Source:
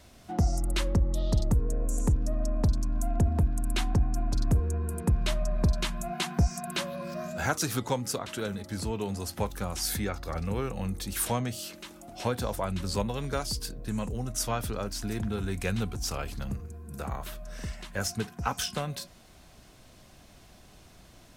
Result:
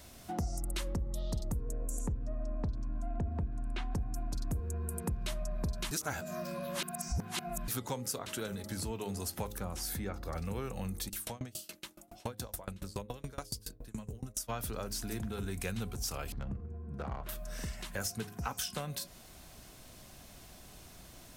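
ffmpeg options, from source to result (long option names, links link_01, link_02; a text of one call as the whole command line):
ffmpeg -i in.wav -filter_complex "[0:a]asplit=3[link_01][link_02][link_03];[link_01]afade=type=out:start_time=2.06:duration=0.02[link_04];[link_02]lowpass=2800,afade=type=in:start_time=2.06:duration=0.02,afade=type=out:start_time=3.9:duration=0.02[link_05];[link_03]afade=type=in:start_time=3.9:duration=0.02[link_06];[link_04][link_05][link_06]amix=inputs=3:normalize=0,asettb=1/sr,asplit=3[link_07][link_08][link_09];[link_07]atrim=end=9.584[link_10];[link_08]atrim=start=9.58:end=10.33,asetpts=PTS-STARTPTS,afade=type=in:duration=0.004:curve=qsin,afade=type=out:start_time=0.746:duration=0.004:curve=qsin,highshelf=frequency=2100:gain=-9[link_11];[link_09]atrim=start=10.326[link_12];[link_10][link_11]acrossfade=duration=0.004:curve1=hsin:curve2=qsin[link_13];[link_13][link_12]acrossfade=duration=0.004:curve1=qsin:curve2=hsin,asplit=3[link_14][link_15][link_16];[link_14]afade=type=out:start_time=11.08:duration=0.02[link_17];[link_15]aeval=exprs='val(0)*pow(10,-30*if(lt(mod(7.1*n/s,1),2*abs(7.1)/1000),1-mod(7.1*n/s,1)/(2*abs(7.1)/1000),(mod(7.1*n/s,1)-2*abs(7.1)/1000)/(1-2*abs(7.1)/1000))/20)':channel_layout=same,afade=type=in:start_time=11.08:duration=0.02,afade=type=out:start_time=14.48:duration=0.02[link_18];[link_16]afade=type=in:start_time=14.48:duration=0.02[link_19];[link_17][link_18][link_19]amix=inputs=3:normalize=0,asettb=1/sr,asplit=3[link_20][link_21][link_22];[link_20]atrim=end=16.324[link_23];[link_21]atrim=start=16.32:end=17.29,asetpts=PTS-STARTPTS,afade=type=in:duration=0.004:curve=qsin,afade=type=out:start_time=0.966:duration=0.004:curve=qsin,adynamicsmooth=sensitivity=5:basefreq=1100[link_24];[link_22]atrim=start=17.286[link_25];[link_23][link_24]acrossfade=duration=0.004:curve1=hsin:curve2=qsin[link_26];[link_26][link_25]acrossfade=duration=0.004:curve1=qsin:curve2=hsin,asplit=3[link_27][link_28][link_29];[link_27]atrim=end=5.912[link_30];[link_28]atrim=start=5.908:end=7.682,asetpts=PTS-STARTPTS,areverse[link_31];[link_29]atrim=start=7.678[link_32];[link_30][link_31]acrossfade=duration=0.004:curve1=hsin:curve2=hsin[link_33];[link_33][link_32]acrossfade=duration=0.004:curve1=hsin:curve2=hsin,highshelf=frequency=9100:gain=11.5,bandreject=frequency=104:width_type=h:width=4,bandreject=frequency=208:width_type=h:width=4,bandreject=frequency=312:width_type=h:width=4,bandreject=frequency=416:width_type=h:width=4,bandreject=frequency=520:width_type=h:width=4,acompressor=threshold=-37dB:ratio=2.5" out.wav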